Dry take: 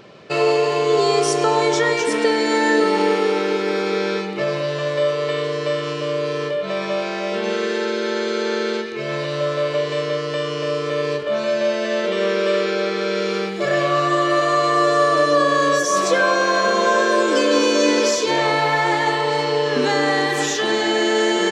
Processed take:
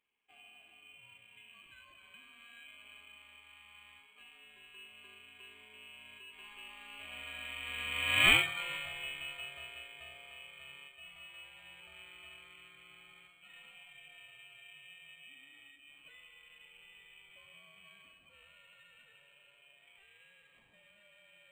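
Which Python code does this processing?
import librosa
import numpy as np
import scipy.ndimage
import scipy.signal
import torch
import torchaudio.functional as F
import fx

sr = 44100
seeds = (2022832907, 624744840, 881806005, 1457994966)

y = fx.doppler_pass(x, sr, speed_mps=16, closest_m=1.1, pass_at_s=8.3)
y = fx.freq_invert(y, sr, carrier_hz=3500)
y = np.interp(np.arange(len(y)), np.arange(len(y))[::8], y[::8])
y = y * 10.0 ** (4.0 / 20.0)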